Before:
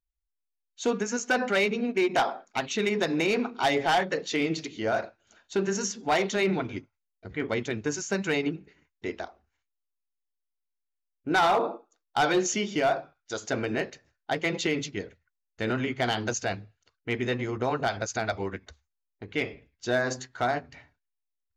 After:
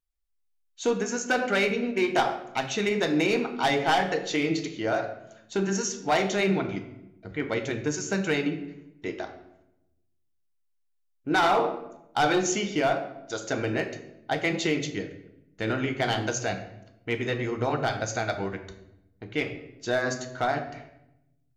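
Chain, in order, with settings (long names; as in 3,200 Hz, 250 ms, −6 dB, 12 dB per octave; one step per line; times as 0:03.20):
rectangular room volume 290 cubic metres, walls mixed, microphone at 0.54 metres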